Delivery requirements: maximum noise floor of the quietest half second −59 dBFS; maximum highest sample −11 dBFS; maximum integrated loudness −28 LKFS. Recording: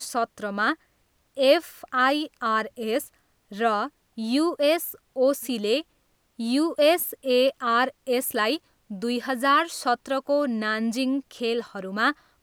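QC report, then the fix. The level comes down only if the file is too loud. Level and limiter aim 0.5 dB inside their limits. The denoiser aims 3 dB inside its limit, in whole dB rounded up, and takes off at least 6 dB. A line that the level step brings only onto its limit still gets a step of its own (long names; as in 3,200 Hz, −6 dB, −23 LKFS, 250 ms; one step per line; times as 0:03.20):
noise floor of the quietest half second −67 dBFS: in spec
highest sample −7.5 dBFS: out of spec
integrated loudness −25.0 LKFS: out of spec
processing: level −3.5 dB
brickwall limiter −11.5 dBFS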